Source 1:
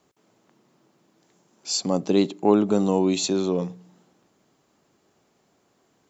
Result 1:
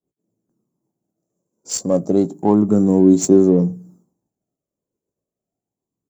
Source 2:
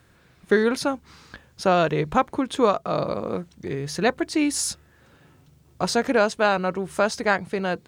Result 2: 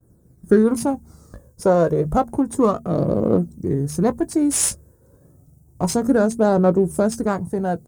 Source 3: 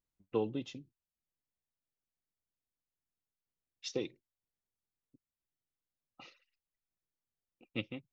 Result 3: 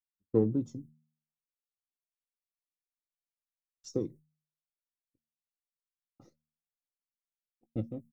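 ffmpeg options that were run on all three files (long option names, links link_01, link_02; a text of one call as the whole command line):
ffmpeg -i in.wav -filter_complex "[0:a]agate=range=-33dB:threshold=-51dB:ratio=3:detection=peak,aphaser=in_gain=1:out_gain=1:delay=2.1:decay=0.48:speed=0.3:type=triangular,firequalizer=gain_entry='entry(310,0);entry(890,-9);entry(1500,-14);entry(2600,-30);entry(5700,-4);entry(8800,7)':delay=0.05:min_phase=1,asplit=2[link_01][link_02];[link_02]adynamicsmooth=sensitivity=6:basefreq=1300,volume=2dB[link_03];[link_01][link_03]amix=inputs=2:normalize=0,asplit=2[link_04][link_05];[link_05]adelay=18,volume=-13dB[link_06];[link_04][link_06]amix=inputs=2:normalize=0,bandreject=frequency=76.96:width_type=h:width=4,bandreject=frequency=153.92:width_type=h:width=4,bandreject=frequency=230.88:width_type=h:width=4" out.wav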